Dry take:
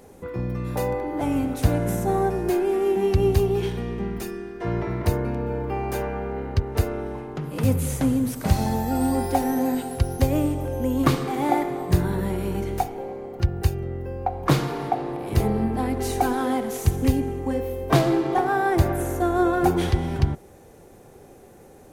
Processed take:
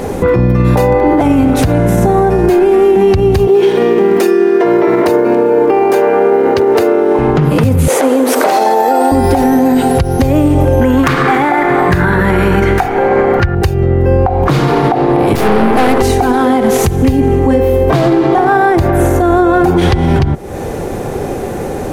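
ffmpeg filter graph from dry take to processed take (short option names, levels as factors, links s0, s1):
-filter_complex "[0:a]asettb=1/sr,asplit=3[s0][s1][s2];[s0]atrim=end=3.474[s3];[s1]atrim=start=3.47:end=7.19,asetpts=PTS-STARTPTS,afade=t=in:d=0.004:c=qsin,afade=t=out:st=3.716:d=0.004:c=qsin,acrusher=bits=9:mode=log:mix=0:aa=0.000001,highpass=f=370:t=q:w=1.8[s4];[s2]atrim=start=7.186[s5];[s3][s4]acrossfade=d=0.004:c1=hsin:c2=qsin[s6];[s6][s5]acrossfade=d=0.004:c1=qsin:c2=hsin,asettb=1/sr,asplit=3[s7][s8][s9];[s7]atrim=end=7.884[s10];[s8]atrim=start=7.88:end=9.12,asetpts=PTS-STARTPTS,afade=t=in:d=0.004:c=qsin,afade=t=out:st=1.236:d=0.004:c=qsin,highpass=f=380:w=0.5412,highpass=f=380:w=1.3066,equalizer=f=510:w=0.4:g=6.5[s11];[s9]atrim=start=9.116[s12];[s10][s11]acrossfade=d=0.004:c1=hsin:c2=qsin[s13];[s13][s12]acrossfade=d=0.004:c1=qsin:c2=hsin,asettb=1/sr,asplit=3[s14][s15][s16];[s14]atrim=end=10.814[s17];[s15]atrim=start=10.81:end=13.55,asetpts=PTS-STARTPTS,afade=t=in:d=0.004:c=qsin,afade=t=out:st=2.736:d=0.004:c=qsin,equalizer=f=1600:w=1.1:g=14.5,aeval=exprs='(mod(1.26*val(0)+1,2)-1)/1.26':c=same[s18];[s16]atrim=start=13.546[s19];[s17][s18]acrossfade=d=0.004:c1=hsin:c2=qsin[s20];[s20][s19]acrossfade=d=0.004:c1=qsin:c2=hsin,asettb=1/sr,asplit=3[s21][s22][s23];[s21]atrim=end=15.354[s24];[s22]atrim=start=15.35:end=16.02,asetpts=PTS-STARTPTS,afade=t=in:d=0.004:c=qsin,afade=t=out:st=0.666:d=0.004:c=qsin,highpass=120,bass=f=250:g=-12,treble=f=4000:g=2,aeval=exprs='(tanh(50.1*val(0)+0.8)-tanh(0.8))/50.1':c=same[s25];[s23]atrim=start=16.016[s26];[s24][s25]acrossfade=d=0.004:c1=hsin:c2=qsin[s27];[s27][s26]acrossfade=d=0.004:c1=qsin:c2=hsin,highshelf=f=5400:g=-9,acompressor=threshold=0.02:ratio=5,alimiter=level_in=33.5:limit=0.891:release=50:level=0:latency=1,volume=0.891"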